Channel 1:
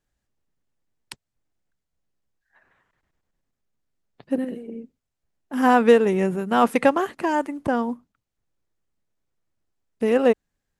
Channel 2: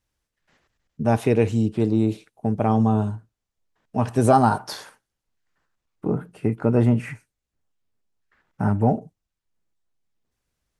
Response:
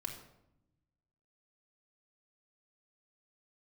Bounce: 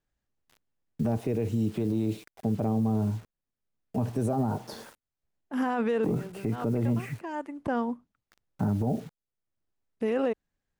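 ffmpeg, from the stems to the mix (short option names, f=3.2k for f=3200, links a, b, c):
-filter_complex "[0:a]highshelf=f=7.8k:g=-10,volume=-4dB[a];[1:a]acrossover=split=100|620[b][c][d];[b]acompressor=threshold=-41dB:ratio=4[e];[c]acompressor=threshold=-24dB:ratio=4[f];[d]acompressor=threshold=-46dB:ratio=4[g];[e][f][g]amix=inputs=3:normalize=0,acrusher=bits=8:mix=0:aa=0.000001,volume=2dB,asplit=2[h][i];[i]apad=whole_len=476099[j];[a][j]sidechaincompress=threshold=-41dB:ratio=4:attack=16:release=551[k];[k][h]amix=inputs=2:normalize=0,alimiter=limit=-19.5dB:level=0:latency=1:release=19"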